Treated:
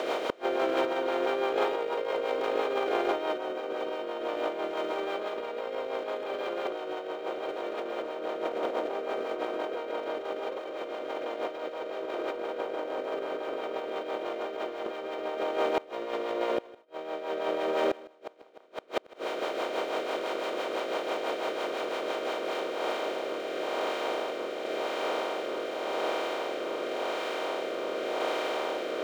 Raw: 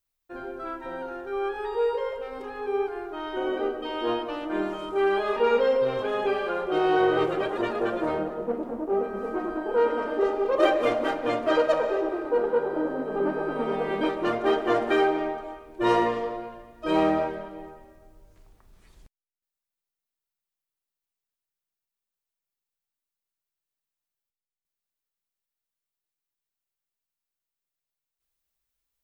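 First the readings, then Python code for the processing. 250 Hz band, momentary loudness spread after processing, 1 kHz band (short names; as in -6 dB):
-7.5 dB, 7 LU, -3.0 dB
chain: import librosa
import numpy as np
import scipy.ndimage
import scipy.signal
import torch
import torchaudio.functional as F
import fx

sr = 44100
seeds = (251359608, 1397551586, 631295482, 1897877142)

y = fx.bin_compress(x, sr, power=0.2)
y = scipy.signal.sosfilt(scipy.signal.butter(2, 410.0, 'highpass', fs=sr, output='sos'), y)
y = fx.peak_eq(y, sr, hz=1700.0, db=-5.5, octaves=0.51)
y = fx.over_compress(y, sr, threshold_db=-23.0, ratio=-0.5)
y = fx.rotary_switch(y, sr, hz=6.0, then_hz=0.9, switch_at_s=22.09)
y = fx.gate_flip(y, sr, shuts_db=-12.0, range_db=-36)
y = y + 10.0 ** (-20.5 / 20.0) * np.pad(y, (int(156 * sr / 1000.0), 0))[:len(y)]
y = np.interp(np.arange(len(y)), np.arange(len(y))[::2], y[::2])
y = y * librosa.db_to_amplitude(-3.0)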